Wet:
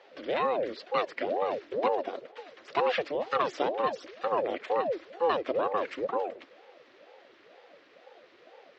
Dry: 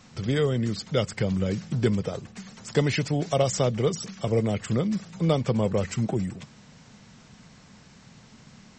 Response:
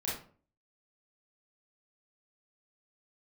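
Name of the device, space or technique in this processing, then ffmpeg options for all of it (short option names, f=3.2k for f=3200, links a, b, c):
voice changer toy: -af "aeval=exprs='val(0)*sin(2*PI*400*n/s+400*0.7/2.1*sin(2*PI*2.1*n/s))':c=same,highpass=450,equalizer=f=530:t=q:w=4:g=7,equalizer=f=890:t=q:w=4:g=-4,equalizer=f=1.9k:t=q:w=4:g=3,lowpass=f=3.8k:w=0.5412,lowpass=f=3.8k:w=1.3066"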